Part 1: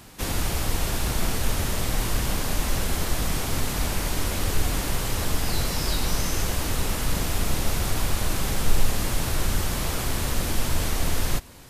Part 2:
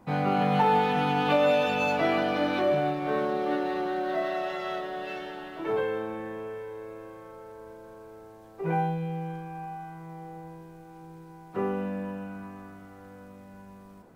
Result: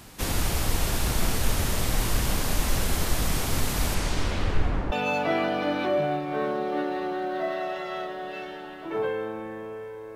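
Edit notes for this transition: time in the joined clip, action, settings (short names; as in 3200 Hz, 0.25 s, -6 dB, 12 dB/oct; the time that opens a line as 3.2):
part 1
3.94–4.92 LPF 10000 Hz -> 1100 Hz
4.92 switch to part 2 from 1.66 s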